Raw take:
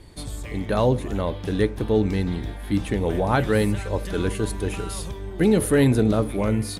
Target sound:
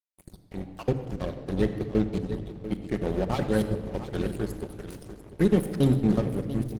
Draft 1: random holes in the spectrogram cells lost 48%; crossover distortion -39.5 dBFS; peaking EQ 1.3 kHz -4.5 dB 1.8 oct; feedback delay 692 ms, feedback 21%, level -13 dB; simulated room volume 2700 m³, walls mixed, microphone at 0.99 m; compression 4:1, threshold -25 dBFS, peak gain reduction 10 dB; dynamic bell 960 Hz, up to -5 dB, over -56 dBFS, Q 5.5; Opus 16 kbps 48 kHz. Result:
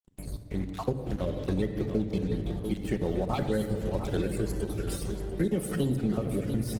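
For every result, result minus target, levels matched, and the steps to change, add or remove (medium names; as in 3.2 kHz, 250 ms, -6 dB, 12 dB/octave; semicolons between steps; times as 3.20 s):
compression: peak gain reduction +10 dB; crossover distortion: distortion -10 dB
remove: compression 4:1, threshold -25 dBFS, peak gain reduction 10 dB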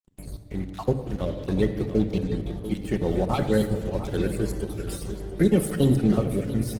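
crossover distortion: distortion -10 dB
change: crossover distortion -28 dBFS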